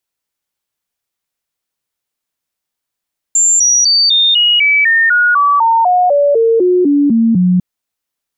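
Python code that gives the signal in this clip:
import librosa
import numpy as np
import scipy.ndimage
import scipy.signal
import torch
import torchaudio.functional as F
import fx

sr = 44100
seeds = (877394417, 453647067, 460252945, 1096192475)

y = fx.stepped_sweep(sr, from_hz=7290.0, direction='down', per_octave=3, tones=17, dwell_s=0.25, gap_s=0.0, level_db=-7.0)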